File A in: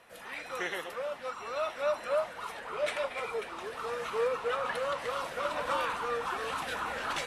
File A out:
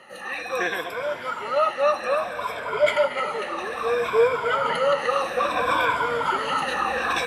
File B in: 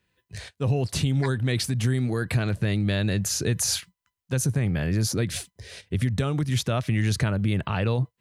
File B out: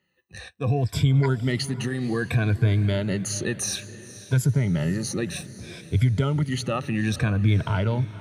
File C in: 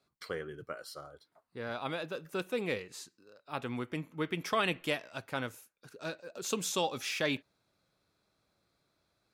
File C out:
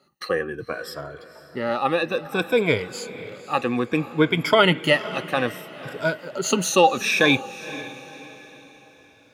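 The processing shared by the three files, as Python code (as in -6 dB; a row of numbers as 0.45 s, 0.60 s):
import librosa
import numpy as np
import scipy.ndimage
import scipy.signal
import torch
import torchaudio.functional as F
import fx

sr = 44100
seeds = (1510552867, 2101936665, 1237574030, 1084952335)

y = fx.spec_ripple(x, sr, per_octave=1.7, drift_hz=-0.61, depth_db=17)
y = scipy.signal.sosfilt(scipy.signal.butter(2, 74.0, 'highpass', fs=sr, output='sos'), y)
y = fx.bass_treble(y, sr, bass_db=1, treble_db=-6)
y = fx.echo_diffused(y, sr, ms=512, feedback_pct=42, wet_db=-15.5)
y = y * 10.0 ** (-24 / 20.0) / np.sqrt(np.mean(np.square(y)))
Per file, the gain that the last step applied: +7.5 dB, -2.0 dB, +11.5 dB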